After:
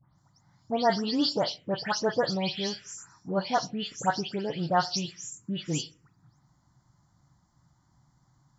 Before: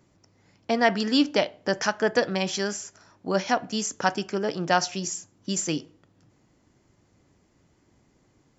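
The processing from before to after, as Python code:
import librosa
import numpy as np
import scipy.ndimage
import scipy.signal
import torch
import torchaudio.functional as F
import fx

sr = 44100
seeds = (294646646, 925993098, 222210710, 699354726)

y = fx.spec_delay(x, sr, highs='late', ms=185)
y = fx.graphic_eq_10(y, sr, hz=(125, 250, 1000, 4000), db=(12, -5, 5, 6))
y = fx.env_phaser(y, sr, low_hz=440.0, high_hz=2500.0, full_db=-18.0)
y = F.gain(torch.from_numpy(y), -3.0).numpy()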